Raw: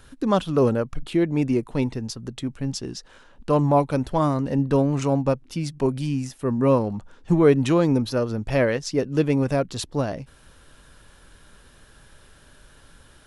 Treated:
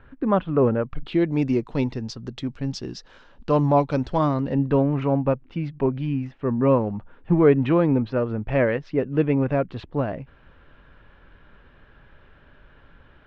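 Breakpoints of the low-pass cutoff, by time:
low-pass 24 dB/octave
0.70 s 2.3 kHz
1.30 s 5.4 kHz
4.10 s 5.4 kHz
4.90 s 2.7 kHz

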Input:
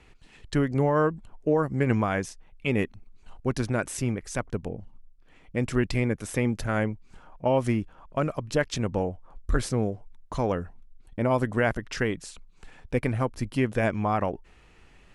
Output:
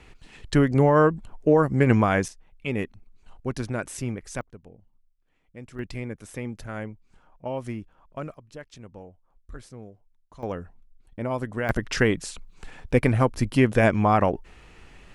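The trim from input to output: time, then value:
+5 dB
from 2.28 s -2.5 dB
from 4.41 s -15 dB
from 5.79 s -8 dB
from 8.34 s -16.5 dB
from 10.43 s -4.5 dB
from 11.69 s +6 dB

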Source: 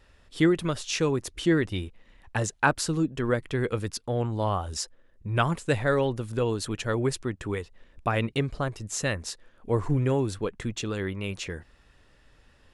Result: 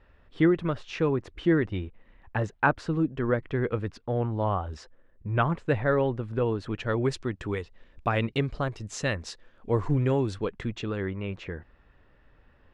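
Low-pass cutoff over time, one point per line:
6.63 s 2.1 kHz
7.14 s 5 kHz
10.42 s 5 kHz
11.07 s 2 kHz

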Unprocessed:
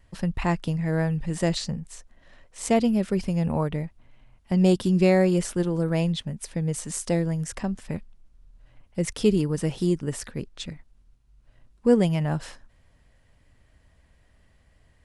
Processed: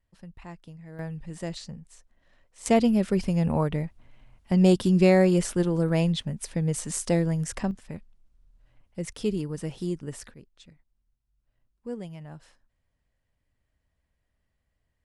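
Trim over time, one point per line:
-18.5 dB
from 0.99 s -10 dB
from 2.66 s +0.5 dB
from 7.71 s -7 dB
from 10.34 s -17 dB

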